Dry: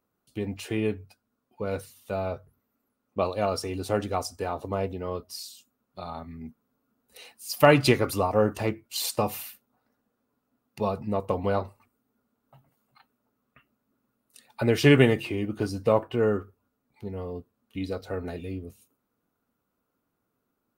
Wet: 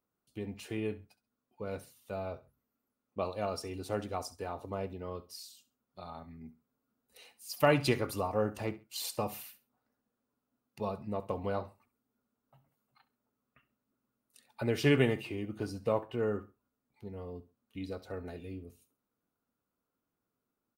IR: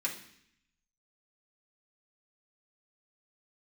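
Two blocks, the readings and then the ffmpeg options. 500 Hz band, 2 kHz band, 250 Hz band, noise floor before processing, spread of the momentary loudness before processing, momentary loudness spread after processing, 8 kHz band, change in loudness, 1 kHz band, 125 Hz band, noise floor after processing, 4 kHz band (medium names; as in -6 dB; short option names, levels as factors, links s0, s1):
-8.5 dB, -8.5 dB, -8.5 dB, -79 dBFS, 20 LU, 20 LU, -8.5 dB, -8.5 dB, -8.5 dB, -8.5 dB, under -85 dBFS, -8.5 dB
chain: -af "aecho=1:1:67|134:0.141|0.0367,volume=0.376"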